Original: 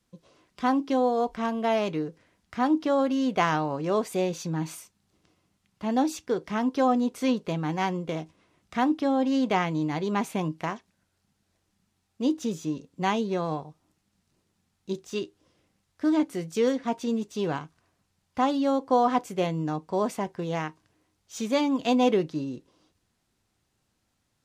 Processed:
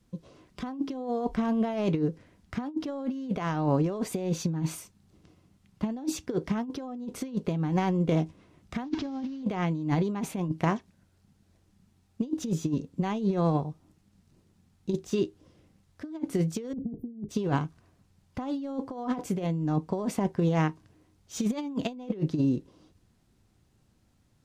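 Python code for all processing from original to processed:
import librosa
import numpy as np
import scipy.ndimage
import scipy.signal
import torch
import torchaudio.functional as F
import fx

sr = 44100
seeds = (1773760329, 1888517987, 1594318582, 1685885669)

y = fx.chain(x, sr, fx.delta_mod(bps=32000, step_db=-34.0),
    fx.notch(hz=510.0, q=5.2), at=(8.84, 9.43))
y = fx.chain(y, sr, fx.cheby2_bandstop(low_hz=1000.0, high_hz=7000.0, order=4, stop_db=50),
    fx.tilt_eq(slope=-2.5),
    fx.band_widen(depth_pct=40), at=(16.73, 17.29))
y = fx.low_shelf(y, sr, hz=420.0, db=11.5)
y = fx.over_compress(y, sr, threshold_db=-23.0, ratio=-0.5)
y = y * 10.0 ** (-4.5 / 20.0)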